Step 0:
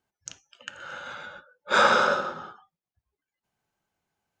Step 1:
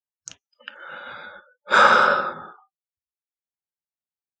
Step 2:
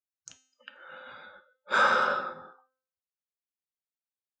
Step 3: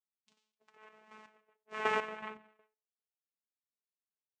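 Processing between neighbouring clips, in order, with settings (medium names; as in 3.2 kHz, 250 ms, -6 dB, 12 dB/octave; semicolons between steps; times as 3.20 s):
spectral noise reduction 28 dB; dynamic bell 1.3 kHz, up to +5 dB, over -32 dBFS, Q 1.1; trim +1.5 dB
feedback comb 260 Hz, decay 0.54 s, harmonics all, mix 70%
vocoder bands 4, saw 216 Hz; flange 0.86 Hz, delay 5.4 ms, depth 2.2 ms, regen -37%; square tremolo 2.7 Hz, depth 65%, duty 40%; trim -2.5 dB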